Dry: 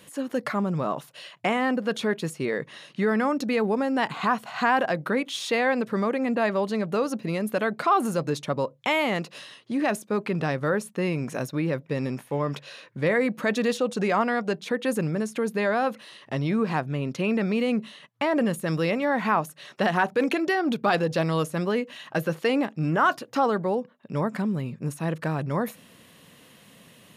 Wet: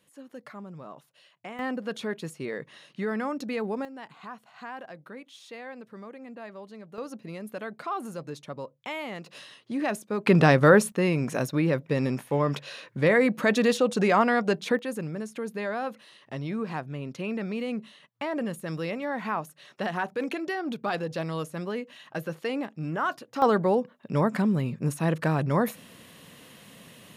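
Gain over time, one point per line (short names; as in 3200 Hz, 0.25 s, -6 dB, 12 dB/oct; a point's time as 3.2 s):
-16 dB
from 1.59 s -6.5 dB
from 3.85 s -18 dB
from 6.98 s -11 dB
from 9.26 s -3.5 dB
from 10.27 s +8.5 dB
from 10.92 s +2 dB
from 14.79 s -7 dB
from 23.42 s +2.5 dB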